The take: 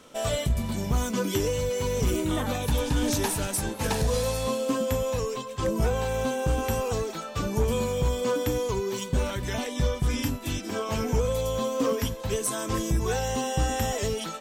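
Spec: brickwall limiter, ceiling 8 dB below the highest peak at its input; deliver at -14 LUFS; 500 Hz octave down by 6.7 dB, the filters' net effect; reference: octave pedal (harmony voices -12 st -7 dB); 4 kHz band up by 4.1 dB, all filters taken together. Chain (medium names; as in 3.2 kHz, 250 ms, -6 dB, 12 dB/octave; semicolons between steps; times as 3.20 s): peaking EQ 500 Hz -7.5 dB; peaking EQ 4 kHz +5.5 dB; peak limiter -22.5 dBFS; harmony voices -12 st -7 dB; trim +17 dB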